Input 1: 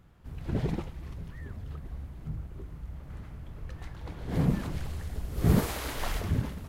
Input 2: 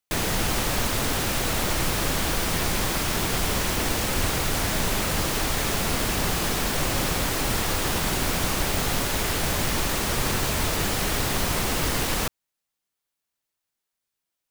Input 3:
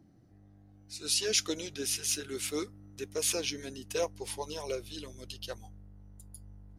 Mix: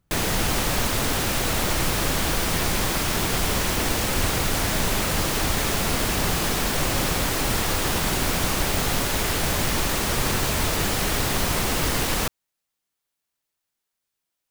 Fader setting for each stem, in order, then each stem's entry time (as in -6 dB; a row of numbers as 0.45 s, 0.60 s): -12.0 dB, +1.5 dB, mute; 0.00 s, 0.00 s, mute